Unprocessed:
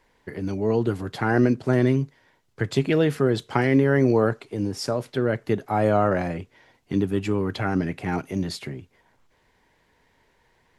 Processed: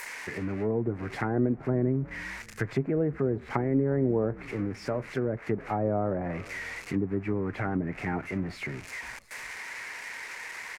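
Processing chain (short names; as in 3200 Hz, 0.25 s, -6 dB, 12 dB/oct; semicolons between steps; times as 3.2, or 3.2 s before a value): switching spikes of -18 dBFS; resonant high shelf 2700 Hz -7 dB, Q 3; in parallel at -2.5 dB: compressor, threshold -27 dBFS, peak gain reduction 12.5 dB; on the sum: frequency-shifting echo 0.355 s, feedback 48%, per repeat -78 Hz, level -21.5 dB; treble ducked by the level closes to 690 Hz, closed at -15.5 dBFS; gain -8 dB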